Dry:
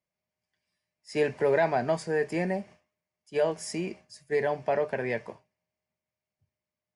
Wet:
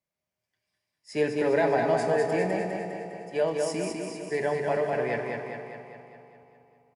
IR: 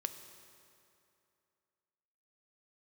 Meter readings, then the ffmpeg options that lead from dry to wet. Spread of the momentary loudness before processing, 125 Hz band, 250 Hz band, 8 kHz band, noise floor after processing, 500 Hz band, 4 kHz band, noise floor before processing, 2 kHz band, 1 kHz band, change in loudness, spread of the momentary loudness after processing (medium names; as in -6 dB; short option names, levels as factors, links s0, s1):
10 LU, +1.5 dB, +3.0 dB, +2.0 dB, under -85 dBFS, +2.0 dB, +1.5 dB, under -85 dBFS, +1.5 dB, +2.5 dB, +1.0 dB, 14 LU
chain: -filter_complex "[0:a]aecho=1:1:202|404|606|808|1010|1212|1414|1616:0.631|0.353|0.198|0.111|0.0621|0.0347|0.0195|0.0109[s0];[1:a]atrim=start_sample=2205,asetrate=34398,aresample=44100[s1];[s0][s1]afir=irnorm=-1:irlink=0,volume=0.891"